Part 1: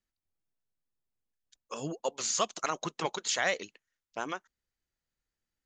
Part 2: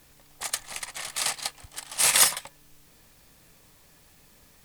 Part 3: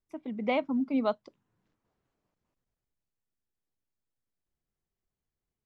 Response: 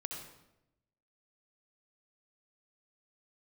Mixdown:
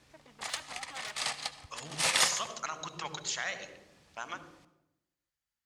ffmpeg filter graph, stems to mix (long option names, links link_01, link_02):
-filter_complex "[0:a]lowshelf=frequency=180:gain=11.5,volume=-3dB,asplit=2[link_01][link_02];[link_02]volume=-10dB[link_03];[1:a]lowpass=5900,volume=-5.5dB,asplit=2[link_04][link_05];[link_05]volume=-8.5dB[link_06];[2:a]aeval=exprs='0.0299*(abs(mod(val(0)/0.0299+3,4)-2)-1)':channel_layout=same,volume=-5.5dB[link_07];[link_01][link_07]amix=inputs=2:normalize=0,highpass=820,acompressor=threshold=-33dB:ratio=6,volume=0dB[link_08];[3:a]atrim=start_sample=2205[link_09];[link_03][link_06]amix=inputs=2:normalize=0[link_10];[link_10][link_09]afir=irnorm=-1:irlink=0[link_11];[link_04][link_08][link_11]amix=inputs=3:normalize=0,highpass=55"